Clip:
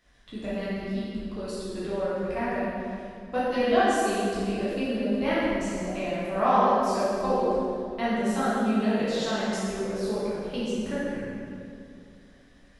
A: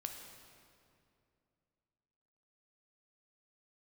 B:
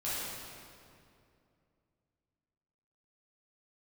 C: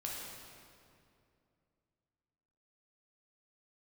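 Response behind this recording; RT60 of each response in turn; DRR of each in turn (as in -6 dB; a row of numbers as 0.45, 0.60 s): B; 2.5, 2.5, 2.5 s; 3.5, -11.0, -4.0 dB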